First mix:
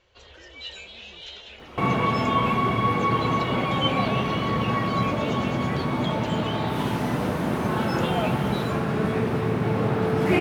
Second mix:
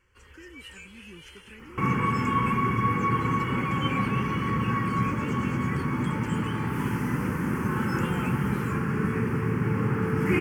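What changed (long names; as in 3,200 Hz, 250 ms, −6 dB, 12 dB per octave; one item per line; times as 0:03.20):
speech +11.5 dB
first sound: remove Butterworth low-pass 7,300 Hz 96 dB per octave
master: add phaser with its sweep stopped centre 1,600 Hz, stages 4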